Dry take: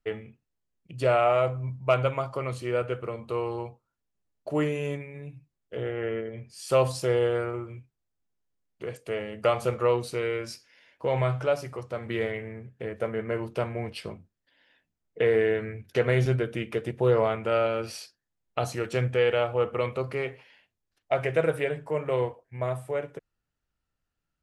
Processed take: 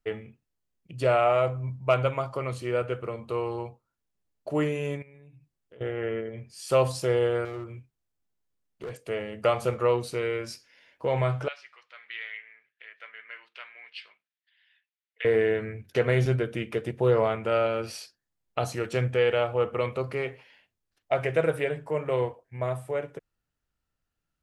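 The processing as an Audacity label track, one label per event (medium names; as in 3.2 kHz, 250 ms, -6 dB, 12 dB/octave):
5.020000	5.810000	compression 4:1, threshold -51 dBFS
7.450000	8.960000	hard clipper -32 dBFS
11.480000	15.250000	Butterworth band-pass 2.6 kHz, Q 1.1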